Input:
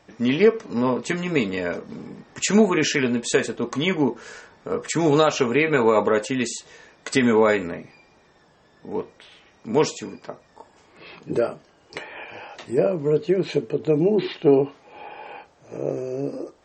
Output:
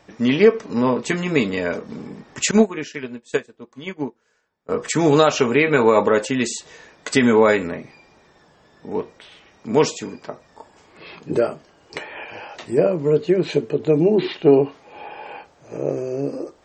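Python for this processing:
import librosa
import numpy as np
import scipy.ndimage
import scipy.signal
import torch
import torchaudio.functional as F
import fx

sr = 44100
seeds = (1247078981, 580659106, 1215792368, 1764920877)

y = fx.upward_expand(x, sr, threshold_db=-31.0, expansion=2.5, at=(2.51, 4.69))
y = F.gain(torch.from_numpy(y), 3.0).numpy()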